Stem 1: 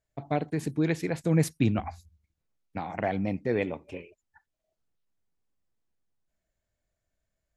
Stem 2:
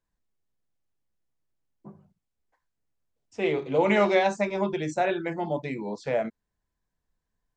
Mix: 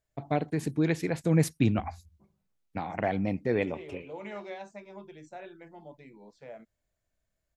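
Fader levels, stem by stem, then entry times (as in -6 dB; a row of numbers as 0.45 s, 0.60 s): 0.0 dB, -19.0 dB; 0.00 s, 0.35 s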